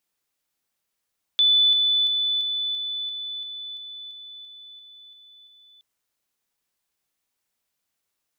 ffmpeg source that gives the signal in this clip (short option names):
-f lavfi -i "aevalsrc='pow(10,(-14.5-3*floor(t/0.34))/20)*sin(2*PI*3490*t)':d=4.42:s=44100"